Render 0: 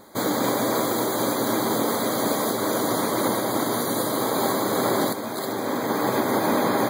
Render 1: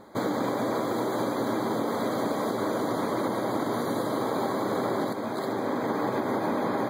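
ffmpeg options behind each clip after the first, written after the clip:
ffmpeg -i in.wav -af "lowpass=frequency=1900:poles=1,acompressor=threshold=-24dB:ratio=6" out.wav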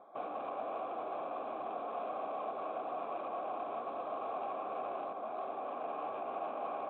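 ffmpeg -i in.wav -filter_complex "[0:a]aresample=8000,asoftclip=type=tanh:threshold=-28.5dB,aresample=44100,asplit=3[link_01][link_02][link_03];[link_01]bandpass=frequency=730:width_type=q:width=8,volume=0dB[link_04];[link_02]bandpass=frequency=1090:width_type=q:width=8,volume=-6dB[link_05];[link_03]bandpass=frequency=2440:width_type=q:width=8,volume=-9dB[link_06];[link_04][link_05][link_06]amix=inputs=3:normalize=0,volume=3.5dB" out.wav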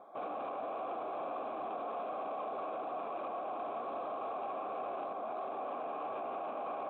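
ffmpeg -i in.wav -af "alimiter=level_in=10.5dB:limit=-24dB:level=0:latency=1:release=18,volume=-10.5dB,volume=2.5dB" out.wav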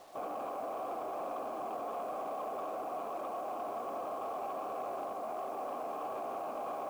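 ffmpeg -i in.wav -af "adynamicsmooth=sensitivity=5:basefreq=1700,acrusher=bits=9:mix=0:aa=0.000001,volume=1dB" out.wav

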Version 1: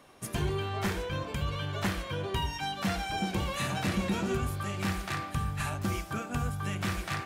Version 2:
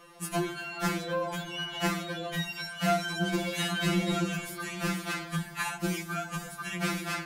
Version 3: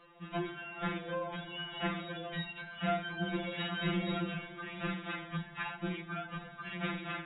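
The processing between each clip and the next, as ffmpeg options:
ffmpeg -i in.wav -af "bandreject=frequency=50:width_type=h:width=6,bandreject=frequency=100:width_type=h:width=6,bandreject=frequency=150:width_type=h:width=6,afftfilt=real='re*2.83*eq(mod(b,8),0)':imag='im*2.83*eq(mod(b,8),0)':win_size=2048:overlap=0.75,volume=6dB" out.wav
ffmpeg -i in.wav -af "volume=-6dB" -ar 24000 -c:a aac -b:a 16k out.aac

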